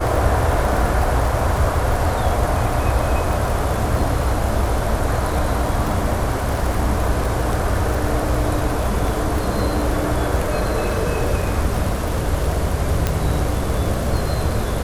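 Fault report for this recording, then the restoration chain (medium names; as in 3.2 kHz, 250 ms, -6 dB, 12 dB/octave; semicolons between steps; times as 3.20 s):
crackle 41 per s -22 dBFS
13.07 s: pop -5 dBFS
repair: de-click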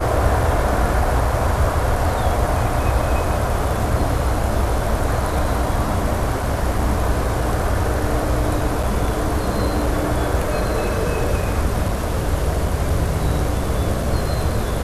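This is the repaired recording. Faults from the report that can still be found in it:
13.07 s: pop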